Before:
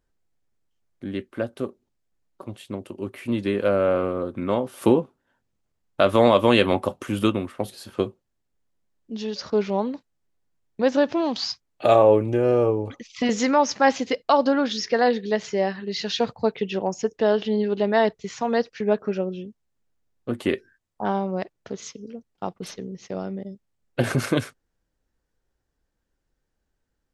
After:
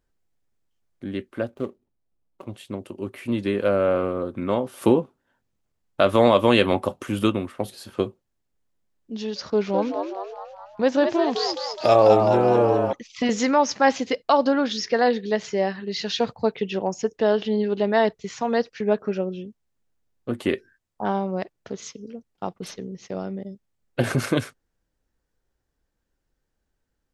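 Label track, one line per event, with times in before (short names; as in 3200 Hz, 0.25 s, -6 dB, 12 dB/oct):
1.470000	2.470000	median filter over 25 samples
9.460000	12.930000	frequency-shifting echo 0.209 s, feedback 55%, per repeat +91 Hz, level -5.5 dB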